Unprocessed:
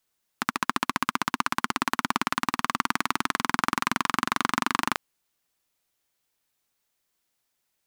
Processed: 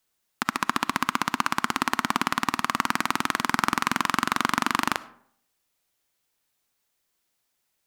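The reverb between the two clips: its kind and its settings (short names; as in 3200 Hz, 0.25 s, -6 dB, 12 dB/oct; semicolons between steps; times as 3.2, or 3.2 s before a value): digital reverb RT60 0.64 s, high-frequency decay 0.55×, pre-delay 20 ms, DRR 17 dB; gain +1.5 dB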